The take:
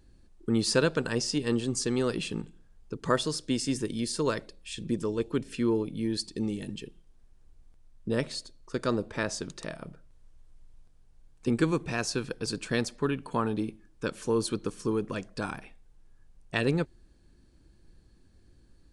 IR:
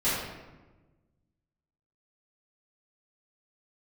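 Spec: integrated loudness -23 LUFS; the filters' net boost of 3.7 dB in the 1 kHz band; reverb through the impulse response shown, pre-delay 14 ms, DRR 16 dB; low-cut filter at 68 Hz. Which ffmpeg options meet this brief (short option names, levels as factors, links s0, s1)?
-filter_complex "[0:a]highpass=68,equalizer=f=1000:t=o:g=4.5,asplit=2[s0][s1];[1:a]atrim=start_sample=2205,adelay=14[s2];[s1][s2]afir=irnorm=-1:irlink=0,volume=0.0398[s3];[s0][s3]amix=inputs=2:normalize=0,volume=2.24"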